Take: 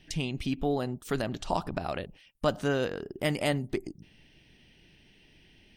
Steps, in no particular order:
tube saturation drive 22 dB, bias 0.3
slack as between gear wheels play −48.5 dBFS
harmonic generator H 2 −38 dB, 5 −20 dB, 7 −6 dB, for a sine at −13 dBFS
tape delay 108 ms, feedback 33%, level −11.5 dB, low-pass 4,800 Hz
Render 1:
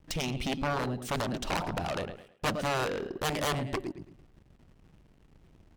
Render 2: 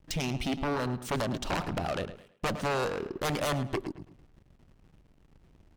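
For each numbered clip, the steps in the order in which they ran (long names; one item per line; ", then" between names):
slack as between gear wheels, then tape delay, then harmonic generator, then tube saturation
tube saturation, then slack as between gear wheels, then harmonic generator, then tape delay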